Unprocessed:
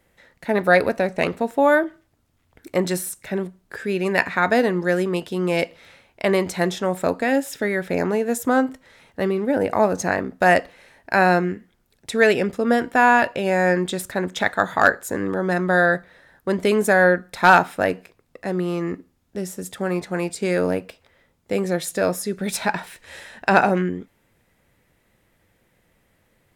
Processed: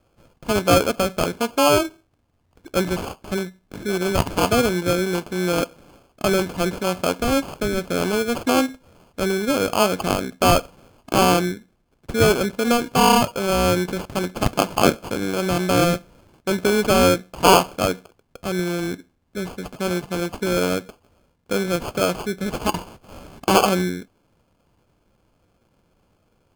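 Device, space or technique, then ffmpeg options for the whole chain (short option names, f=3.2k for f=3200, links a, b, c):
crushed at another speed: -af "asetrate=35280,aresample=44100,acrusher=samples=29:mix=1:aa=0.000001,asetrate=55125,aresample=44100"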